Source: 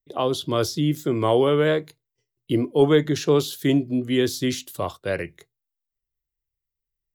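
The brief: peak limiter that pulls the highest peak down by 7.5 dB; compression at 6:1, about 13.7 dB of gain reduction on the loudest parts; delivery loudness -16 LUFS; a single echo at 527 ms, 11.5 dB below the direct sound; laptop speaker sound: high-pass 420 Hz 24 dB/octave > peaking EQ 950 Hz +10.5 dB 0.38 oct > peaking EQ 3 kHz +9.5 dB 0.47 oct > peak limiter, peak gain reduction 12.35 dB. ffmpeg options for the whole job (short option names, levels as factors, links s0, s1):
-af "acompressor=threshold=0.0447:ratio=6,alimiter=limit=0.0631:level=0:latency=1,highpass=f=420:w=0.5412,highpass=f=420:w=1.3066,equalizer=f=950:t=o:w=0.38:g=10.5,equalizer=f=3000:t=o:w=0.47:g=9.5,aecho=1:1:527:0.266,volume=18.8,alimiter=limit=0.447:level=0:latency=1"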